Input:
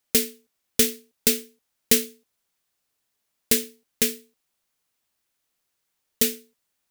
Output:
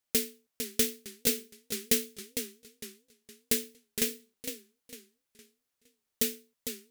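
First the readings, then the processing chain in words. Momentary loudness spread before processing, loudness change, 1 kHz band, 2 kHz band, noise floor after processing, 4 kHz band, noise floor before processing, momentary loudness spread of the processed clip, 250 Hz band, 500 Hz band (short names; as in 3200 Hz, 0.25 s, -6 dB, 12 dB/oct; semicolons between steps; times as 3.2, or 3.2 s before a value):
17 LU, -8.5 dB, -6.5 dB, -6.5 dB, -84 dBFS, -6.5 dB, -78 dBFS, 18 LU, -6.5 dB, -6.5 dB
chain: warbling echo 0.459 s, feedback 34%, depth 195 cents, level -7.5 dB; gain -7.5 dB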